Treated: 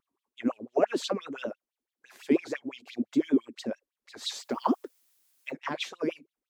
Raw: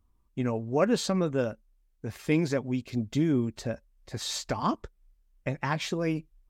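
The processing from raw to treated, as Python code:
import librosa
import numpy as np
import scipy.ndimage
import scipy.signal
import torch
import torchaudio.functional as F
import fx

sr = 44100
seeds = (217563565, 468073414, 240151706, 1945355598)

y = fx.filter_lfo_highpass(x, sr, shape='sine', hz=5.9, low_hz=240.0, high_hz=3500.0, q=6.0)
y = fx.dmg_noise_colour(y, sr, seeds[0], colour='blue', level_db=-61.0, at=(4.36, 5.5), fade=0.02)
y = fx.vibrato(y, sr, rate_hz=6.4, depth_cents=90.0)
y = F.gain(torch.from_numpy(y), -7.0).numpy()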